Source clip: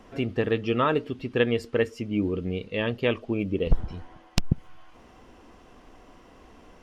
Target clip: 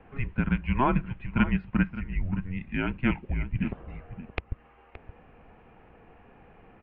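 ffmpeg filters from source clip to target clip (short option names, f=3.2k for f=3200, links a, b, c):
-filter_complex "[0:a]highpass=f=240:t=q:w=0.5412,highpass=f=240:t=q:w=1.307,lowpass=f=2.9k:t=q:w=0.5176,lowpass=f=2.9k:t=q:w=0.7071,lowpass=f=2.9k:t=q:w=1.932,afreqshift=-270,asplit=2[a][b];[b]adelay=571.4,volume=-13dB,highshelf=f=4k:g=-12.9[c];[a][c]amix=inputs=2:normalize=0"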